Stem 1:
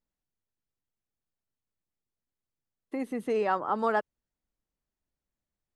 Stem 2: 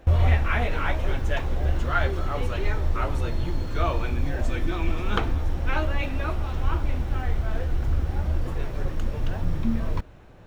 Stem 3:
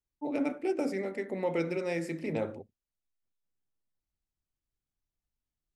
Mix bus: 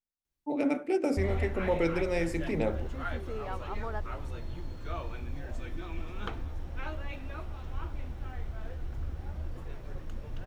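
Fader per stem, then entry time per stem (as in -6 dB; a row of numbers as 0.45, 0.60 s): -12.5, -12.5, +2.5 dB; 0.00, 1.10, 0.25 s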